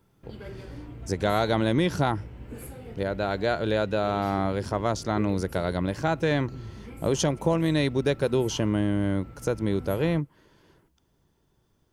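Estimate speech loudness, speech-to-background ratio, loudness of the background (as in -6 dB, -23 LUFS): -26.5 LUFS, 17.0 dB, -43.5 LUFS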